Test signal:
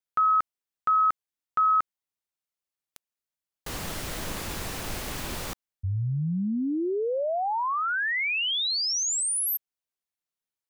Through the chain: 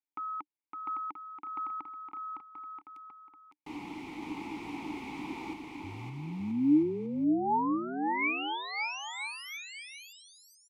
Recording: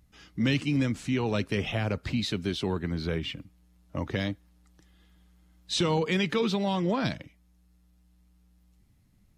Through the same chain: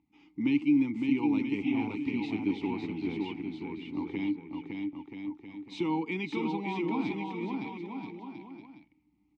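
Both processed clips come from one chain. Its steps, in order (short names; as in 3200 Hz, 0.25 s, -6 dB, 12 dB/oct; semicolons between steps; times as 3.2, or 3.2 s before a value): vowel filter u; bouncing-ball echo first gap 0.56 s, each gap 0.75×, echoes 5; gain +7 dB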